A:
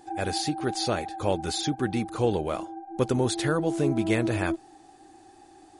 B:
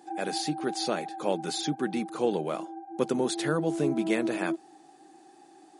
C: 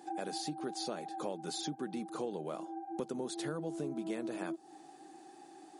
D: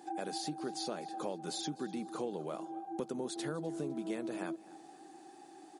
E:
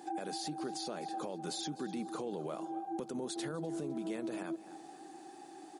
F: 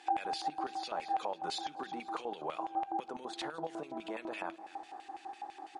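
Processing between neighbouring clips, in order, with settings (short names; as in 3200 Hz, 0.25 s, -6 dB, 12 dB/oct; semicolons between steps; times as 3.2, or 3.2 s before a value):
elliptic high-pass 150 Hz, stop band 40 dB; gain -1.5 dB
dynamic EQ 2200 Hz, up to -6 dB, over -51 dBFS, Q 1.3; compressor 4:1, threshold -37 dBFS, peak gain reduction 14 dB
feedback echo 0.253 s, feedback 41%, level -20.5 dB
limiter -33.5 dBFS, peak gain reduction 9.5 dB; gain +3 dB
LFO band-pass square 6 Hz 920–2600 Hz; on a send at -20 dB: reverb RT60 0.50 s, pre-delay 3 ms; on the sum: gain +12 dB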